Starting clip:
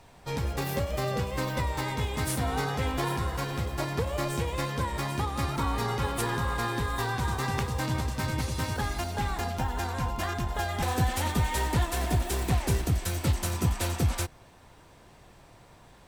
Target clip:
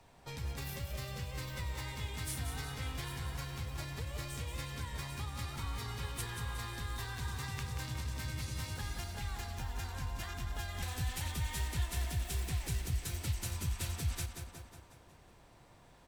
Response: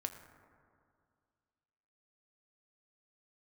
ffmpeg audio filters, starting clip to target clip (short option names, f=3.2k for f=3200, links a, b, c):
-filter_complex "[0:a]aecho=1:1:182|364|546|728|910|1092:0.398|0.207|0.108|0.056|0.0291|0.0151,acrossover=split=130|1700[a][b][c];[b]acompressor=threshold=-41dB:ratio=6[d];[a][d][c]amix=inputs=3:normalize=0,volume=-7.5dB"